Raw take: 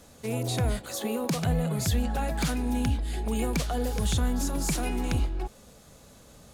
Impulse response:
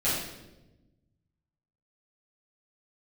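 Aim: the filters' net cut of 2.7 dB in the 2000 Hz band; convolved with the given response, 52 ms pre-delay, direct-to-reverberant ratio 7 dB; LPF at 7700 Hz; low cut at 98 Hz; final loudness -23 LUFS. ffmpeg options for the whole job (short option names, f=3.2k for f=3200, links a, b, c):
-filter_complex "[0:a]highpass=98,lowpass=7.7k,equalizer=f=2k:t=o:g=-3.5,asplit=2[a][b];[1:a]atrim=start_sample=2205,adelay=52[c];[b][c]afir=irnorm=-1:irlink=0,volume=-18dB[d];[a][d]amix=inputs=2:normalize=0,volume=7dB"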